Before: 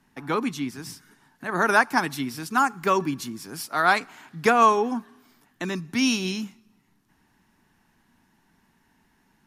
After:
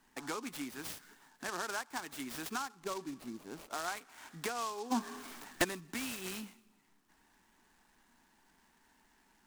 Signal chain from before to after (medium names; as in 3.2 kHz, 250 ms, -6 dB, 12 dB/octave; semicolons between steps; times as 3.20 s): 2.75–3.88 s: median filter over 25 samples; peaking EQ 120 Hz -14.5 dB 1.8 oct; compression 6:1, threshold -36 dBFS, peak gain reduction 20.5 dB; 4.90–5.63 s: sine folder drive 8 dB -> 11 dB, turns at -19 dBFS; delay time shaken by noise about 5.1 kHz, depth 0.051 ms; trim -1.5 dB